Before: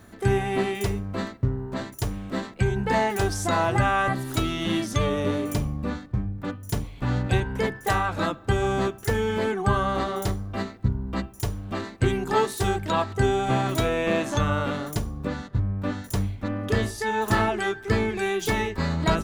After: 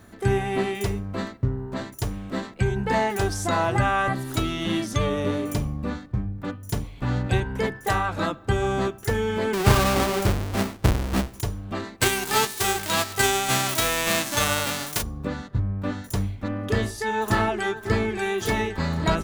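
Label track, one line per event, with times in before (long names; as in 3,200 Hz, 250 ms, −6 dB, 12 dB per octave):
9.530000	11.410000	each half-wave held at its own peak
12.000000	15.010000	spectral envelope flattened exponent 0.3
17.070000	18.150000	delay throw 550 ms, feedback 75%, level −14.5 dB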